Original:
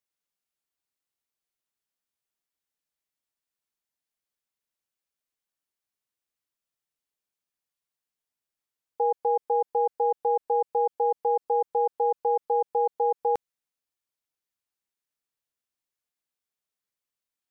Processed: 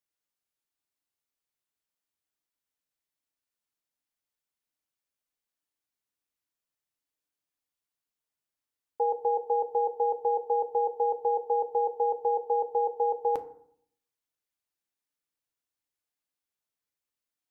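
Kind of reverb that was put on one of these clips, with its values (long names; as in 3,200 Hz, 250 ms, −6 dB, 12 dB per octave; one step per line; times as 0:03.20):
feedback delay network reverb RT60 0.63 s, low-frequency decay 1.35×, high-frequency decay 0.45×, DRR 8.5 dB
level −2 dB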